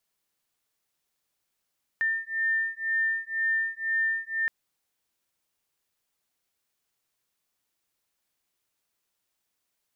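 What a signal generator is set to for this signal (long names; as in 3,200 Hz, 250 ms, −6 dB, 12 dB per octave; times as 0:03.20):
two tones that beat 1,800 Hz, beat 2 Hz, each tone −28 dBFS 2.47 s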